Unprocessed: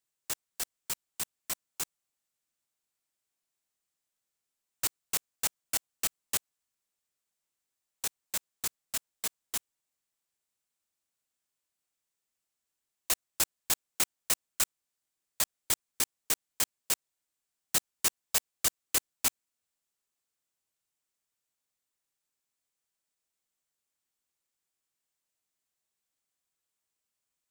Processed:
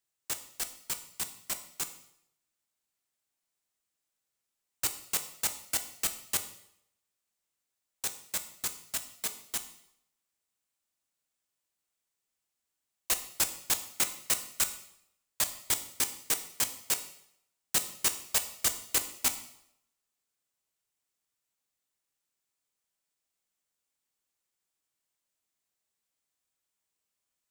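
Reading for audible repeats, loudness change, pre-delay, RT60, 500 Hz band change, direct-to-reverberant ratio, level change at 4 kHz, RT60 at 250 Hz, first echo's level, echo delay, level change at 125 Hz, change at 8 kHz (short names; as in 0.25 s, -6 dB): none, +0.5 dB, 6 ms, 0.75 s, +1.0 dB, 8.0 dB, +0.5 dB, 0.70 s, none, none, +0.5 dB, +0.5 dB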